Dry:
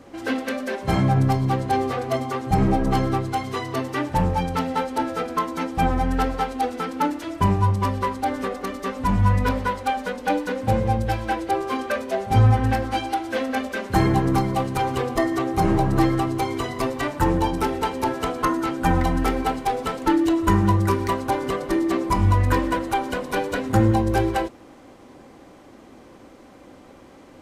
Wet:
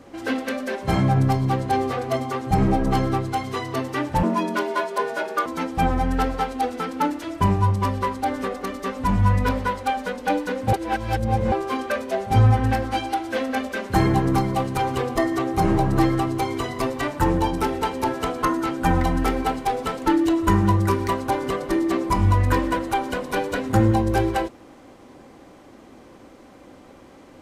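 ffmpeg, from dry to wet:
-filter_complex "[0:a]asettb=1/sr,asplit=3[s0][s1][s2];[s0]atrim=end=4.234[s3];[s1]atrim=start=4.23:end=5.46,asetpts=PTS-STARTPTS,afade=t=in:d=0.004:c=qsin,afade=t=out:st=1.226:d=0.004:c=qsin,afreqshift=140[s4];[s2]atrim=start=5.456[s5];[s3][s4]acrossfade=d=0.004:c1=hsin:c2=qsin[s6];[s6][s5]acrossfade=d=0.004:c1=qsin:c2=hsin,asplit=3[s7][s8][s9];[s7]atrim=end=10.732[s10];[s8]atrim=start=10.728:end=11.522,asetpts=PTS-STARTPTS,areverse[s11];[s9]atrim=start=11.518[s12];[s10][s11]acrossfade=d=0.004:c1=hsin:c2=hsin[s13];[s13][s12]acrossfade=d=0.004:c1=hsin:c2=hsin"

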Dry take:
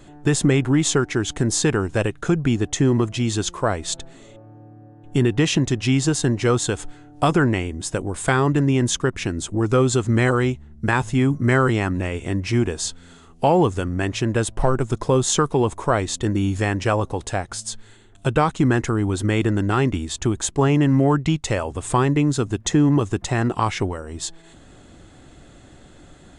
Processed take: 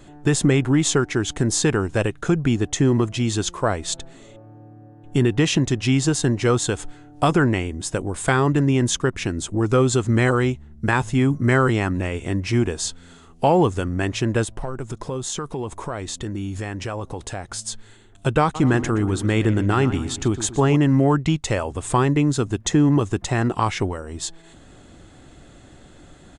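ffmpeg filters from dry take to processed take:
-filter_complex "[0:a]asplit=3[s0][s1][s2];[s0]afade=t=out:st=14.44:d=0.02[s3];[s1]acompressor=threshold=0.0447:ratio=3:attack=3.2:release=140:knee=1:detection=peak,afade=t=in:st=14.44:d=0.02,afade=t=out:st=17.53:d=0.02[s4];[s2]afade=t=in:st=17.53:d=0.02[s5];[s3][s4][s5]amix=inputs=3:normalize=0,asplit=3[s6][s7][s8];[s6]afade=t=out:st=18.54:d=0.02[s9];[s7]asplit=2[s10][s11];[s11]adelay=121,lowpass=f=3200:p=1,volume=0.251,asplit=2[s12][s13];[s13]adelay=121,lowpass=f=3200:p=1,volume=0.5,asplit=2[s14][s15];[s15]adelay=121,lowpass=f=3200:p=1,volume=0.5,asplit=2[s16][s17];[s17]adelay=121,lowpass=f=3200:p=1,volume=0.5,asplit=2[s18][s19];[s19]adelay=121,lowpass=f=3200:p=1,volume=0.5[s20];[s10][s12][s14][s16][s18][s20]amix=inputs=6:normalize=0,afade=t=in:st=18.54:d=0.02,afade=t=out:st=20.75:d=0.02[s21];[s8]afade=t=in:st=20.75:d=0.02[s22];[s9][s21][s22]amix=inputs=3:normalize=0"

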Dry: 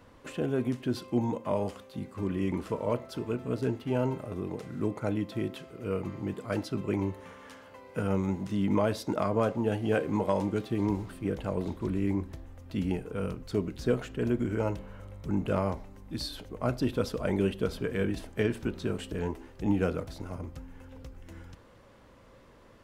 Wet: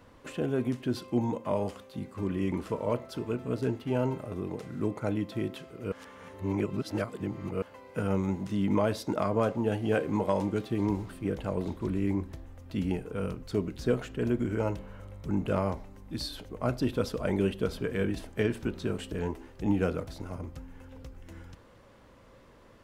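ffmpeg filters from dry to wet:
-filter_complex "[0:a]asplit=3[s0][s1][s2];[s0]atrim=end=5.922[s3];[s1]atrim=start=5.918:end=7.622,asetpts=PTS-STARTPTS,areverse[s4];[s2]atrim=start=7.618[s5];[s3][s4]acrossfade=d=0.004:c1=hsin:c2=hsin[s6];[s6][s5]acrossfade=d=0.004:c1=hsin:c2=hsin"

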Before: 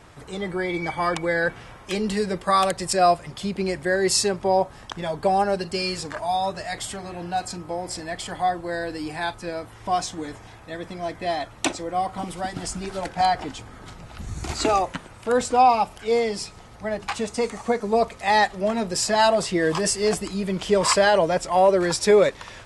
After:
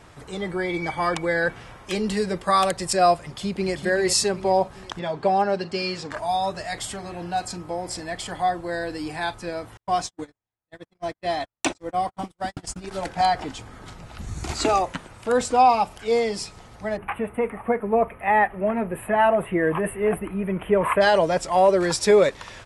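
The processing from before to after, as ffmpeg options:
-filter_complex "[0:a]asplit=2[s0][s1];[s1]afade=t=in:st=3.23:d=0.01,afade=t=out:st=3.74:d=0.01,aecho=0:1:390|780|1170|1560|1950:0.421697|0.189763|0.0853935|0.0384271|0.0172922[s2];[s0][s2]amix=inputs=2:normalize=0,asettb=1/sr,asplit=3[s3][s4][s5];[s3]atrim=end=4.994[s6];[s4]atrim=start=4.99:end=6.11,asetpts=PTS-STARTPTS,afade=t=in:d=0.004:c=qsin,afade=t=out:st=1.116:d=0.004:c=qsin,highpass=120,lowpass=4900[s7];[s5]atrim=start=6.106[s8];[s6][s7]acrossfade=d=0.004:c1=hsin:c2=qsin[s9];[s9][s8]acrossfade=d=0.004:c1=qsin:c2=hsin,asettb=1/sr,asplit=3[s10][s11][s12];[s10]atrim=end=9.774[s13];[s11]atrim=start=9.77:end=12.91,asetpts=PTS-STARTPTS,afade=t=in:d=0.004:c=qsin,afade=t=out:st=3.136:d=0.004:c=qsin,agate=range=0.00355:threshold=0.0282:ratio=16:release=100:detection=peak[s14];[s12]atrim=start=12.906[s15];[s13][s14]acrossfade=d=0.004:c1=hsin:c2=qsin[s16];[s16][s15]acrossfade=d=0.004:c1=qsin:c2=hsin,asplit=3[s17][s18][s19];[s17]afade=t=out:st=16.96:d=0.02[s20];[s18]asuperstop=centerf=5500:order=8:qfactor=0.69,afade=t=in:st=16.96:d=0.02,afade=t=out:st=21:d=0.02[s21];[s19]afade=t=in:st=21:d=0.02[s22];[s20][s21][s22]amix=inputs=3:normalize=0"

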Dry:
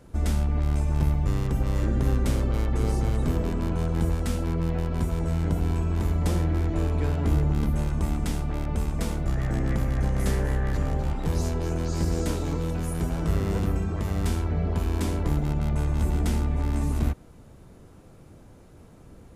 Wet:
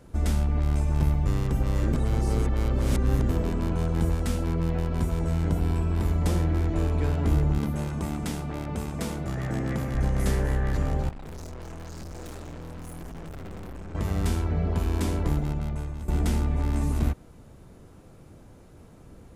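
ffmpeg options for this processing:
-filter_complex "[0:a]asettb=1/sr,asplit=3[s0][s1][s2];[s0]atrim=end=5.584[s3];[s1]atrim=start=5.58:end=6.06,asetpts=PTS-STARTPTS,afade=t=in:d=0.004:c=qsin,afade=t=out:st=0.476:d=0.004:c=qsin,bandreject=f=6500:w=6.7[s4];[s2]atrim=start=6.056[s5];[s3][s4]acrossfade=d=0.004:c1=hsin:c2=qsin[s6];[s6][s5]acrossfade=d=0.004:c1=qsin:c2=hsin,asettb=1/sr,asplit=3[s7][s8][s9];[s7]atrim=end=7.584[s10];[s8]atrim=start=7.58:end=9.95,asetpts=PTS-STARTPTS,afade=t=in:d=0.004:c=qsin,afade=t=out:st=2.366:d=0.004:c=qsin,highpass=99[s11];[s9]atrim=start=9.946[s12];[s10][s11]acrossfade=d=0.004:c1=hsin:c2=qsin[s13];[s13][s12]acrossfade=d=0.004:c1=qsin:c2=hsin,asettb=1/sr,asplit=3[s14][s15][s16];[s14]atrim=end=11.094[s17];[s15]atrim=start=11.09:end=13.95,asetpts=PTS-STARTPTS,afade=t=in:d=0.004:c=qsin,afade=t=out:st=2.856:d=0.004:c=qsin,aeval=exprs='(tanh(79.4*val(0)+0.6)-tanh(0.6))/79.4':c=same[s18];[s16]atrim=start=13.946[s19];[s17][s18]acrossfade=d=0.004:c1=hsin:c2=qsin[s20];[s20][s19]acrossfade=d=0.004:c1=qsin:c2=hsin,asplit=4[s21][s22][s23][s24];[s21]atrim=end=1.932[s25];[s22]atrim=start=1.928:end=3.292,asetpts=PTS-STARTPTS,areverse[s26];[s23]atrim=start=3.288:end=16.08,asetpts=PTS-STARTPTS,afade=t=out:st=11.972:d=0.82:silence=0.199526[s27];[s24]atrim=start=16.08,asetpts=PTS-STARTPTS,afade=t=in:d=0.004:c=hsin:silence=0.199526[s28];[s25][s26]acrossfade=d=0.004:c1=hsin:c2=hsin[s29];[s27][s28]concat=n=2:v=0:a=1[s30];[s29][s30]acrossfade=d=0.004:c1=hsin:c2=hsin"

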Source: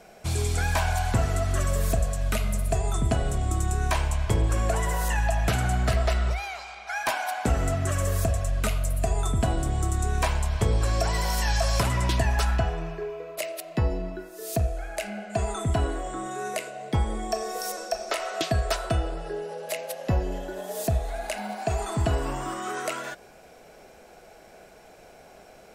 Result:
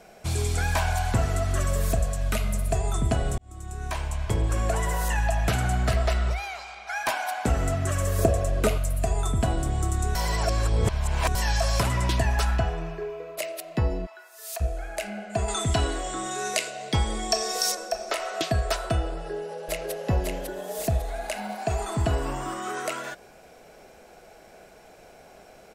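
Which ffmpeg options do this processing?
-filter_complex "[0:a]asettb=1/sr,asplit=3[s0][s1][s2];[s0]atrim=end=8.184[s3];[s1]atrim=start=8.18:end=8.78,asetpts=PTS-STARTPTS,afade=t=in:d=0.004:c=qsin,afade=t=out:st=0.596:d=0.004:c=qsin,equalizer=f=400:t=o:w=1.4:g=13.5[s4];[s2]atrim=start=8.776[s5];[s3][s4]acrossfade=d=0.004:c1=hsin:c2=qsin[s6];[s6][s5]acrossfade=d=0.004:c1=qsin:c2=hsin,asplit=3[s7][s8][s9];[s7]afade=t=out:st=14.05:d=0.02[s10];[s8]highpass=f=790:w=0.5412,highpass=f=790:w=1.3066,afade=t=in:st=14.05:d=0.02,afade=t=out:st=14.6:d=0.02[s11];[s9]afade=t=in:st=14.6:d=0.02[s12];[s10][s11][s12]amix=inputs=3:normalize=0,asettb=1/sr,asplit=3[s13][s14][s15];[s13]atrim=end=15.484[s16];[s14]atrim=start=15.48:end=17.75,asetpts=PTS-STARTPTS,afade=t=in:d=0.004:c=qsin,afade=t=out:st=2.266:d=0.004:c=qsin,equalizer=f=4800:t=o:w=2.1:g=12.5[s17];[s15]atrim=start=17.746[s18];[s16][s17]acrossfade=d=0.004:c1=hsin:c2=qsin[s19];[s19][s18]acrossfade=d=0.004:c1=qsin:c2=hsin,asplit=2[s20][s21];[s21]afade=t=in:st=19.13:d=0.01,afade=t=out:st=19.92:d=0.01,aecho=0:1:550|1100|1650|2200|2750:0.668344|0.267338|0.106935|0.042774|0.0171096[s22];[s20][s22]amix=inputs=2:normalize=0,asplit=4[s23][s24][s25][s26];[s23]atrim=end=3.38,asetpts=PTS-STARTPTS,afade=t=out:st=3.376:d=0.004:c=hsin[s27];[s24]atrim=start=3.38:end=10.152,asetpts=PTS-STARTPTS,afade=t=in:d=1.62:c=qsin[s28];[s25]atrim=start=10.148:end=11.352,asetpts=PTS-STARTPTS,areverse[s29];[s26]atrim=start=11.348[s30];[s27][s28]concat=n=2:v=0:a=1[s31];[s31][s29]acrossfade=d=0.004:c1=hsin:c2=hsin[s32];[s32][s30]acrossfade=d=0.004:c1=hsin:c2=hsin"

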